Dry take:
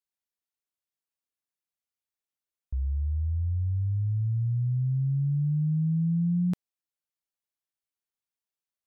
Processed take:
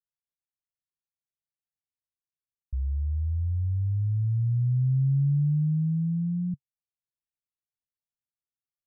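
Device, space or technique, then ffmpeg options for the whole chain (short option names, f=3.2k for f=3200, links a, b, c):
the neighbour's flat through the wall: -af "lowpass=f=160:w=0.5412,lowpass=f=160:w=1.3066,equalizer=f=140:t=o:w=0.53:g=4.5"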